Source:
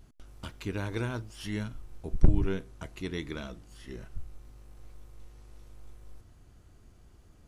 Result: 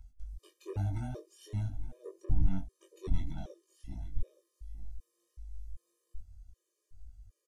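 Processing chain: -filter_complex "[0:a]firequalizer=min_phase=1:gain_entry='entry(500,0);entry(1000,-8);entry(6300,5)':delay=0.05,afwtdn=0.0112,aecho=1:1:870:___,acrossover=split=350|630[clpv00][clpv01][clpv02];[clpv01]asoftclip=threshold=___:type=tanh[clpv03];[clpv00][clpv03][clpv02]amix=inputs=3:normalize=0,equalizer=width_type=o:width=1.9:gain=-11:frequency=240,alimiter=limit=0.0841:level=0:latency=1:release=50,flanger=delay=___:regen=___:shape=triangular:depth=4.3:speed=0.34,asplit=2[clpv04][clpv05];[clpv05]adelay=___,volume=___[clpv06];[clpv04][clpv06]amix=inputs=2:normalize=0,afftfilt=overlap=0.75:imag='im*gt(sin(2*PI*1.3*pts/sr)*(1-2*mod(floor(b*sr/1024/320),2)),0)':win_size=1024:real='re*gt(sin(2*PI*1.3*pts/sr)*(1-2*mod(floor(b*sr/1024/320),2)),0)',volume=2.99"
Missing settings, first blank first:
0.168, 0.01, 3.8, -72, 21, 0.631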